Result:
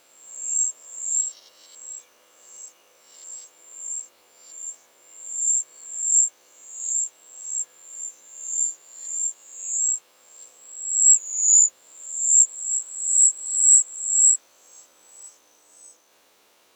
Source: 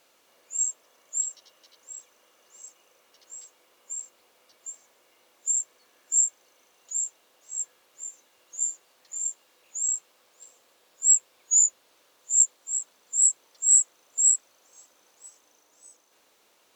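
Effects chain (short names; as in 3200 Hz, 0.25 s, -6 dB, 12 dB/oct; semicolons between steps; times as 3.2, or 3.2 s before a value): spectral swells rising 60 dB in 0.74 s; gain +2 dB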